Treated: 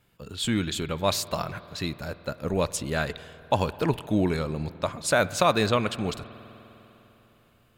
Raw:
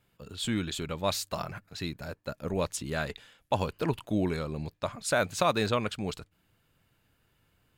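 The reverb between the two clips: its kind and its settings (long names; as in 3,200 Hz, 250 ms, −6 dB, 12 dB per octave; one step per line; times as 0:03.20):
spring reverb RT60 3.7 s, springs 50 ms, chirp 25 ms, DRR 16 dB
level +4.5 dB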